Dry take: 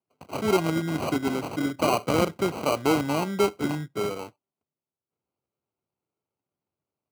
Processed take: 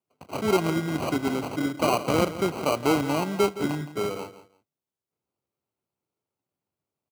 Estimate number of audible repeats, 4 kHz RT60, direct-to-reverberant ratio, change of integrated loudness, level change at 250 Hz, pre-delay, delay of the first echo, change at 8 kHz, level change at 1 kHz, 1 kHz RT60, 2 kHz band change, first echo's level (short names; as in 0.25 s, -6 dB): 2, none, none, 0.0 dB, 0.0 dB, none, 0.167 s, 0.0 dB, 0.0 dB, none, 0.0 dB, -14.0 dB